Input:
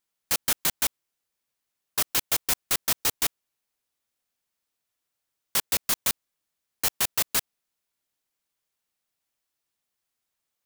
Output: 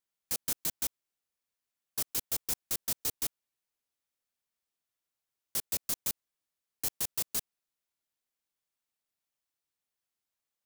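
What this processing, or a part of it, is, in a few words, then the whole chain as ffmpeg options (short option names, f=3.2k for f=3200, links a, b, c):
one-band saturation: -filter_complex "[0:a]acrossover=split=560|4500[a][b][c];[b]asoftclip=type=tanh:threshold=-37.5dB[d];[a][d][c]amix=inputs=3:normalize=0,volume=-7dB"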